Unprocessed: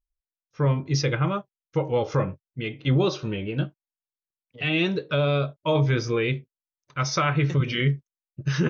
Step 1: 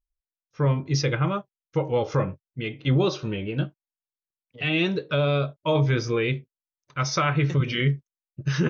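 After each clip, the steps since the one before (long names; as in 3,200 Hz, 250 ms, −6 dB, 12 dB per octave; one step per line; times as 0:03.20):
no processing that can be heard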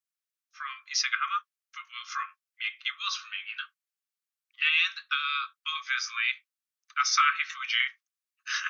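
Chebyshev high-pass filter 1,100 Hz, order 10
level +3.5 dB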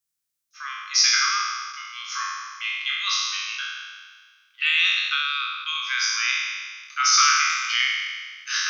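peak hold with a decay on every bin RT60 1.62 s
bass and treble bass +8 dB, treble +8 dB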